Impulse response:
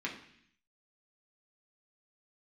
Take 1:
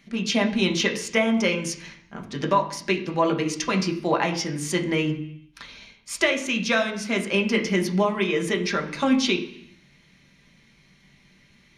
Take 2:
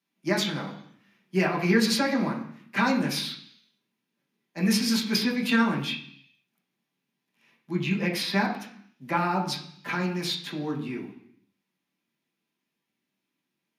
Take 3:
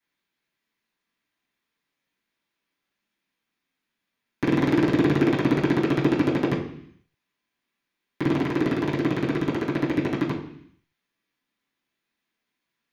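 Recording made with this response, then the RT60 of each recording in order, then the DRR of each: 2; 0.65, 0.65, 0.65 seconds; 1.5, −3.5, −10.5 decibels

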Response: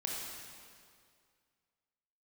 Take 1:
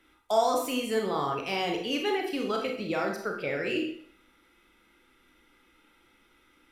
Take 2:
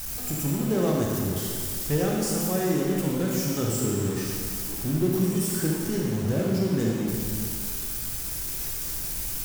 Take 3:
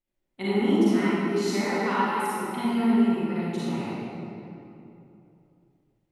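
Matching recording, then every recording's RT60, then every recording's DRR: 2; 0.65, 2.2, 2.9 seconds; 1.0, −2.5, −11.5 decibels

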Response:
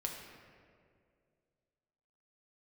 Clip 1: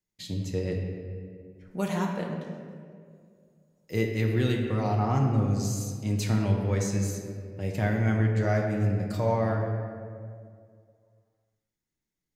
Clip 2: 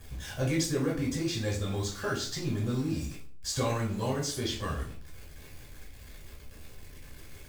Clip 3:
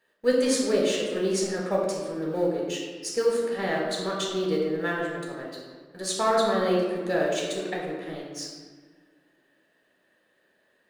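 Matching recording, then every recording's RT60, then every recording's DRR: 1; 2.2, 0.50, 1.6 seconds; 0.0, −4.0, −2.5 decibels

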